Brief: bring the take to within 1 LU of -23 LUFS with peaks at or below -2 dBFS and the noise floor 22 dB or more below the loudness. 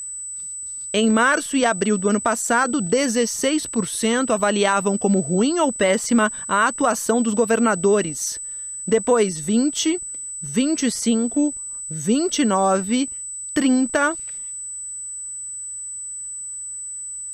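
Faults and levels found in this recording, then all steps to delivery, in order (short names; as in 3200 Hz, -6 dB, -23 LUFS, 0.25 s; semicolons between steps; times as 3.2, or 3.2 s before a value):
steady tone 8000 Hz; tone level -29 dBFS; loudness -21.0 LUFS; peak -5.0 dBFS; loudness target -23.0 LUFS
-> notch 8000 Hz, Q 30; gain -2 dB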